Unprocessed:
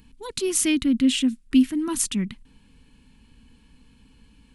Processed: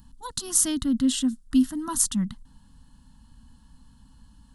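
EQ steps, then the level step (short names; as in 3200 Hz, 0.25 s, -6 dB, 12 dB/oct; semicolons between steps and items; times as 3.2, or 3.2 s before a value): fixed phaser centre 980 Hz, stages 4; +3.0 dB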